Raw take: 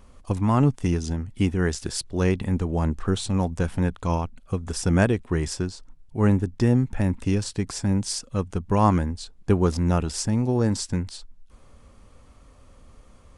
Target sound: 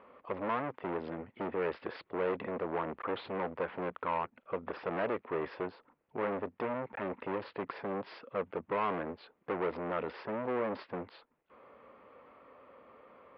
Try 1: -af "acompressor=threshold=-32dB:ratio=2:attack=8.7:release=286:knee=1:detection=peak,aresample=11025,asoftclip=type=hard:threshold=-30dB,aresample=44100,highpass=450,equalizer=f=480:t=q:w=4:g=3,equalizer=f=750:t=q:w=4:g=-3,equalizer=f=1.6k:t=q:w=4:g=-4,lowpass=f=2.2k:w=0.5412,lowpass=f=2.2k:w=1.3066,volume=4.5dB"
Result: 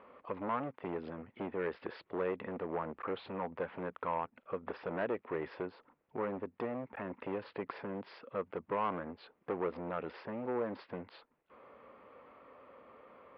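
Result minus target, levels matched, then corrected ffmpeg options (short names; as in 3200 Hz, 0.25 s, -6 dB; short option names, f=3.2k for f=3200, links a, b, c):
compressor: peak gain reduction +10.5 dB
-af "aresample=11025,asoftclip=type=hard:threshold=-30dB,aresample=44100,highpass=450,equalizer=f=480:t=q:w=4:g=3,equalizer=f=750:t=q:w=4:g=-3,equalizer=f=1.6k:t=q:w=4:g=-4,lowpass=f=2.2k:w=0.5412,lowpass=f=2.2k:w=1.3066,volume=4.5dB"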